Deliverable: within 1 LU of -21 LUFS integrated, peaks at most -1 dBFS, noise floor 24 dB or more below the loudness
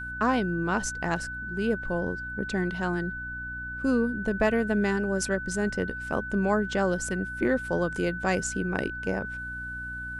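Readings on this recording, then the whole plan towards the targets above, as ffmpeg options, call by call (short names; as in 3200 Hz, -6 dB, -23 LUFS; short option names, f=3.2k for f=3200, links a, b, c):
hum 60 Hz; harmonics up to 300 Hz; hum level -40 dBFS; steady tone 1500 Hz; tone level -34 dBFS; loudness -28.5 LUFS; peak -11.0 dBFS; loudness target -21.0 LUFS
-> -af "bandreject=f=60:t=h:w=4,bandreject=f=120:t=h:w=4,bandreject=f=180:t=h:w=4,bandreject=f=240:t=h:w=4,bandreject=f=300:t=h:w=4"
-af "bandreject=f=1.5k:w=30"
-af "volume=7.5dB"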